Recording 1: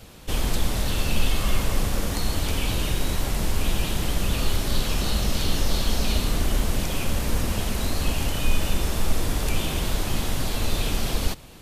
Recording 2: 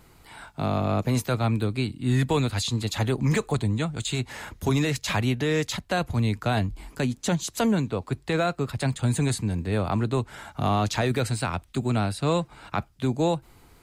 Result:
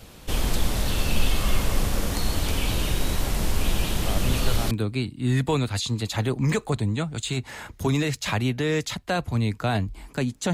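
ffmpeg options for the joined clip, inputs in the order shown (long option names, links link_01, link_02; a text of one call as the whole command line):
ffmpeg -i cue0.wav -i cue1.wav -filter_complex "[1:a]asplit=2[link_01][link_02];[0:a]apad=whole_dur=10.53,atrim=end=10.53,atrim=end=4.712[link_03];[link_02]atrim=start=1.528:end=7.35[link_04];[link_01]atrim=start=0.88:end=1.53,asetpts=PTS-STARTPTS,volume=-7dB,afade=type=in:duration=0.004:curve=hsin,afade=type=out:start_time=0.646:duration=0.004:curve=hsin,adelay=4060[link_05];[link_03][link_04]acrossfade=duration=0.004:curve1=hsin:curve2=hsin[link_06];[link_06][link_05]amix=inputs=2:normalize=0" out.wav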